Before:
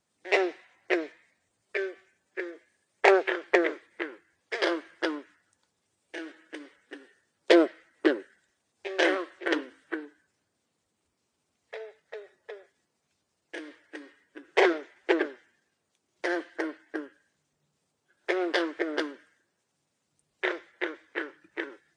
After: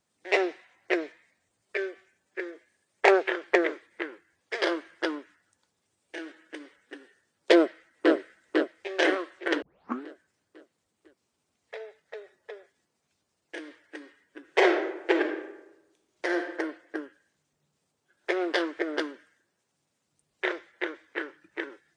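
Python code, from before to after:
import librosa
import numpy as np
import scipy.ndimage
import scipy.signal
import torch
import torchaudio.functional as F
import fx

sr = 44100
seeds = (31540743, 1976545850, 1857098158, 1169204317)

y = fx.echo_throw(x, sr, start_s=7.55, length_s=0.58, ms=500, feedback_pct=45, wet_db=-1.5)
y = fx.reverb_throw(y, sr, start_s=14.43, length_s=2.06, rt60_s=0.96, drr_db=4.5)
y = fx.edit(y, sr, fx.tape_start(start_s=9.62, length_s=0.42), tone=tone)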